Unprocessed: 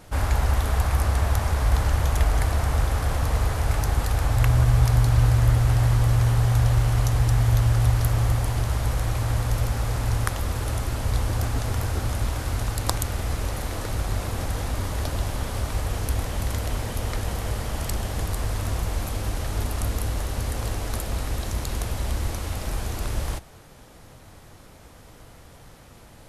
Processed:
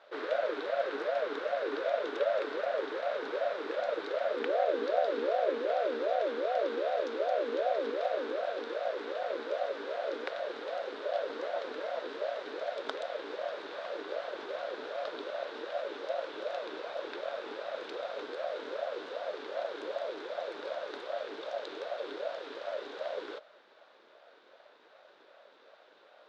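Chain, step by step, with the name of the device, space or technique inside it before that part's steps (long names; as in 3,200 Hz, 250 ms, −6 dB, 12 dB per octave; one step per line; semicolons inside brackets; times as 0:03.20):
voice changer toy (ring modulator whose carrier an LFO sweeps 490 Hz, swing 30%, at 2.6 Hz; loudspeaker in its box 520–4,300 Hz, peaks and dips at 580 Hz +5 dB, 1,500 Hz +7 dB, 3,700 Hz +8 dB)
level −8.5 dB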